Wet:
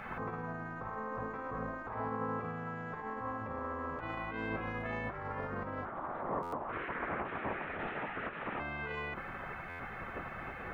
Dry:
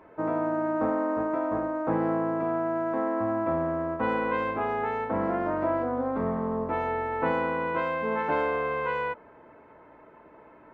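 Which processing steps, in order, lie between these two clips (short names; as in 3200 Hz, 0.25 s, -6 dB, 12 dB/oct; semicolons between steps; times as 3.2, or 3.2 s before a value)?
bell 1100 Hz +7 dB 0.26 oct; negative-ratio compressor -33 dBFS, ratio -0.5; limiter -32 dBFS, peak gain reduction 18 dB; low shelf 150 Hz +8.5 dB; notches 50/100/150/200/250/300 Hz; 5.85–8.6 LPC vocoder at 8 kHz whisper; spectral gate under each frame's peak -10 dB weak; stuck buffer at 6.42/9.69, samples 512, times 8; gain +9 dB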